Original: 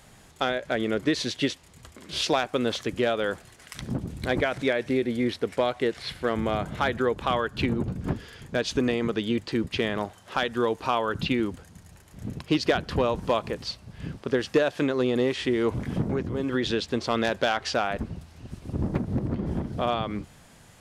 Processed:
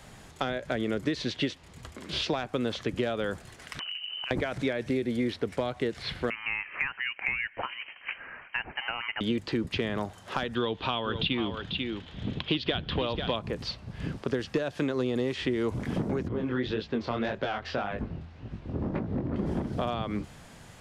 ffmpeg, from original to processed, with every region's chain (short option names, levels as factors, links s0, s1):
-filter_complex "[0:a]asettb=1/sr,asplit=3[s0][s1][s2];[s0]atrim=end=3.794[s3];[s1]atrim=start=3.79:end=4.31,asetpts=PTS-STARTPTS,afade=t=in:d=0.004:c=qsin,afade=t=out:st=0.516:d=0.004:c=qsin,lowpass=f=2600:t=q:w=0.5098,lowpass=f=2600:t=q:w=0.6013,lowpass=f=2600:t=q:w=0.9,lowpass=f=2600:t=q:w=2.563,afreqshift=-3100,acompressor=threshold=0.0178:ratio=12:attack=3.2:release=140:knee=1:detection=peak,aeval=exprs='clip(val(0),-1,0.0282)':c=same[s4];[s2]atrim=start=4.306[s5];[s3][s4]acrossfade=d=0.004:c1=hsin:c2=qsin[s6];[s6][s5]acrossfade=d=0.004:c1=qsin:c2=hsin,asettb=1/sr,asplit=3[s7][s8][s9];[s7]atrim=end=6.304[s10];[s8]atrim=start=6.3:end=9.21,asetpts=PTS-STARTPTS,afade=t=in:d=0.004:c=qsin,afade=t=out:st=2.906:d=0.004:c=qsin,highpass=f=970:t=q:w=1.6,lowpass=f=2800:t=q:w=0.5098,lowpass=f=2800:t=q:w=0.6013,lowpass=f=2800:t=q:w=0.9,lowpass=f=2800:t=q:w=2.563,afreqshift=-3300[s11];[s9]atrim=start=9.206[s12];[s10][s11]acrossfade=d=0.004:c1=hsin:c2=qsin[s13];[s13][s12]acrossfade=d=0.004:c1=qsin:c2=hsin,asettb=1/sr,asplit=3[s14][s15][s16];[s14]atrim=end=10.554[s17];[s15]atrim=start=10.55:end=13.36,asetpts=PTS-STARTPTS,afade=t=in:d=0.004:c=qsin,afade=t=out:st=2.806:d=0.004:c=qsin,lowpass=f=3400:t=q:w=5.8,aecho=1:1:492:0.266,atrim=end_sample=123921[s18];[s16]atrim=start=13.356[s19];[s17][s18]acrossfade=d=0.004:c1=hsin:c2=qsin[s20];[s20][s19]acrossfade=d=0.004:c1=qsin:c2=hsin,asettb=1/sr,asplit=3[s21][s22][s23];[s21]atrim=end=16.284[s24];[s22]atrim=start=16.28:end=19.36,asetpts=PTS-STARTPTS,afade=t=in:d=0.004:c=qsin,afade=t=out:st=3.076:d=0.004:c=qsin,lowpass=3300,flanger=delay=18:depth=6.6:speed=1.8[s25];[s23]atrim=start=19.356[s26];[s24][s25]acrossfade=d=0.004:c1=hsin:c2=qsin[s27];[s27][s26]acrossfade=d=0.004:c1=qsin:c2=hsin,highshelf=f=8100:g=-7.5,acrossover=split=220|5000[s28][s29][s30];[s28]acompressor=threshold=0.0141:ratio=4[s31];[s29]acompressor=threshold=0.0224:ratio=4[s32];[s30]acompressor=threshold=0.00141:ratio=4[s33];[s31][s32][s33]amix=inputs=3:normalize=0,volume=1.5"